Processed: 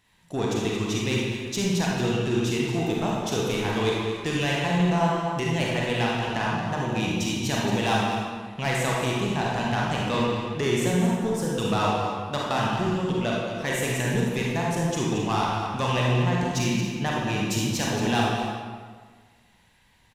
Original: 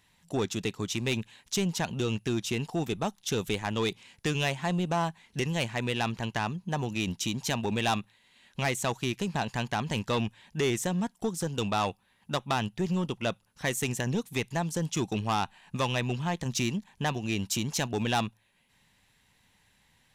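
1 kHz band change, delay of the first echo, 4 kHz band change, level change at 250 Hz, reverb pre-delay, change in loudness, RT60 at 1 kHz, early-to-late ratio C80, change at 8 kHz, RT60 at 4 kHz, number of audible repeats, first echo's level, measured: +6.0 dB, 225 ms, +4.0 dB, +6.0 dB, 33 ms, +5.5 dB, 1.6 s, 0.0 dB, +2.0 dB, 1.1 s, 1, −10.0 dB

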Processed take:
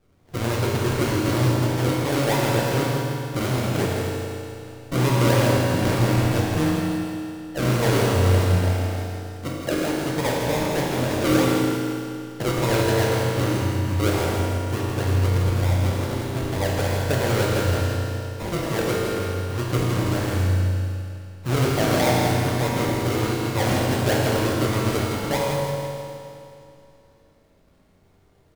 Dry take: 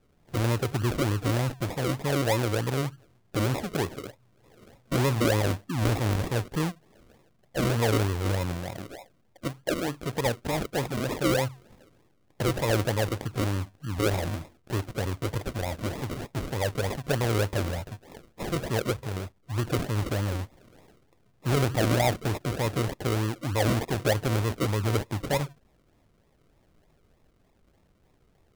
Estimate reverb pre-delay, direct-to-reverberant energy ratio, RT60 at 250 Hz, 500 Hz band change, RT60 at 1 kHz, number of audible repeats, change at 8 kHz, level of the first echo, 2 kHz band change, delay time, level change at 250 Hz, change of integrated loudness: 9 ms, −5.0 dB, 2.6 s, +6.0 dB, 2.6 s, 1, +6.0 dB, −7.0 dB, +6.0 dB, 163 ms, +7.0 dB, +6.0 dB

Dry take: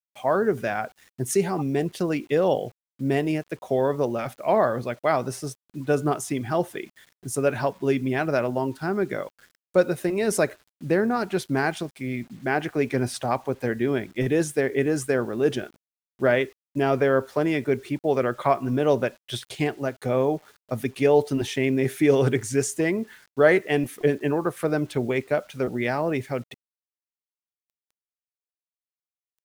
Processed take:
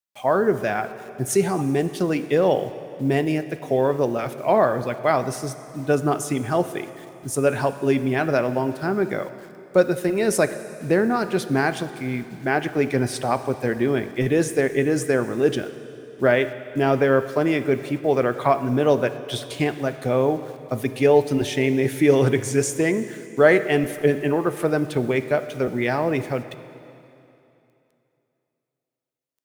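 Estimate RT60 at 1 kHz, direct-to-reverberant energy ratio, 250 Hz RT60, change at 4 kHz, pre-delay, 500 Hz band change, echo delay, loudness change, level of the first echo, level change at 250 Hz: 2.9 s, 11.5 dB, 2.9 s, +3.0 dB, 6 ms, +3.0 dB, no echo audible, +3.0 dB, no echo audible, +3.0 dB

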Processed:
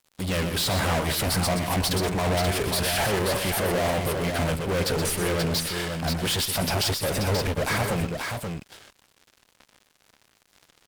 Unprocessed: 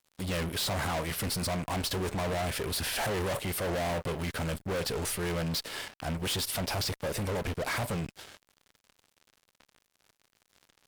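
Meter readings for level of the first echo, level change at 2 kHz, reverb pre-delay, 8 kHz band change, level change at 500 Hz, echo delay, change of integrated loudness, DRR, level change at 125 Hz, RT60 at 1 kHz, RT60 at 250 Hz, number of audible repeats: −8.0 dB, +7.0 dB, no reverb audible, +7.0 dB, +7.5 dB, 124 ms, +7.0 dB, no reverb audible, +7.5 dB, no reverb audible, no reverb audible, 2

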